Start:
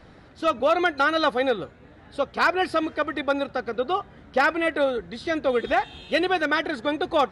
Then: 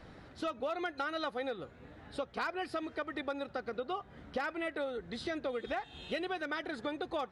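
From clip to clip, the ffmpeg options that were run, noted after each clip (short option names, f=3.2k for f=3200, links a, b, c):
-af "acompressor=threshold=-32dB:ratio=4,volume=-3.5dB"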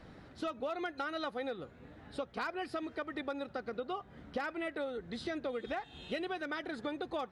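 -af "equalizer=f=210:t=o:w=1.6:g=3,volume=-2dB"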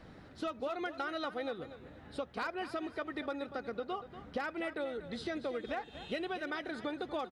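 -af "aecho=1:1:239|478|717:0.224|0.0627|0.0176"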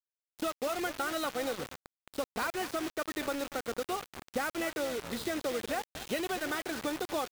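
-af "acrusher=bits=6:mix=0:aa=0.000001,volume=3.5dB"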